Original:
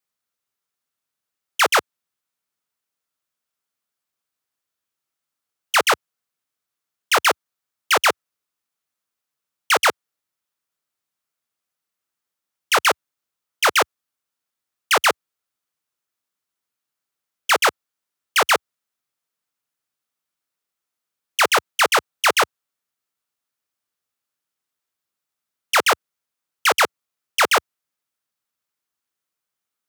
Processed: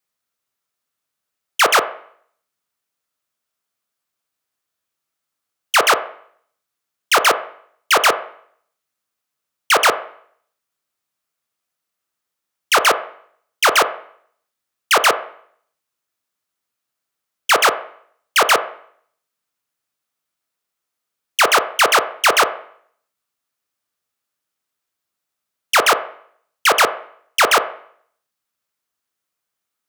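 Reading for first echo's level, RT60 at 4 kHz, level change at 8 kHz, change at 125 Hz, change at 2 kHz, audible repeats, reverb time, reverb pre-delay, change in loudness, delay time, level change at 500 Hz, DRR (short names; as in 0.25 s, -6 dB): none, 0.55 s, +3.0 dB, n/a, +3.0 dB, none, 0.60 s, 21 ms, +3.0 dB, none, +4.0 dB, 8.5 dB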